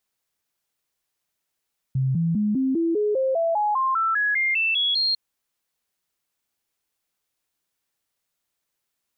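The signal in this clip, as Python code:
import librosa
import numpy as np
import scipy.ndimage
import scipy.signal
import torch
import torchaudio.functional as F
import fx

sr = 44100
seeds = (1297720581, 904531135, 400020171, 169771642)

y = fx.stepped_sweep(sr, from_hz=132.0, direction='up', per_octave=3, tones=16, dwell_s=0.2, gap_s=0.0, level_db=-19.0)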